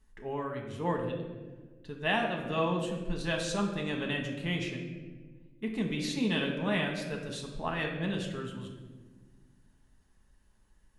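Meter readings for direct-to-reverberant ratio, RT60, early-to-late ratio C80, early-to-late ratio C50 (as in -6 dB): 0.5 dB, 1.4 s, 7.0 dB, 5.0 dB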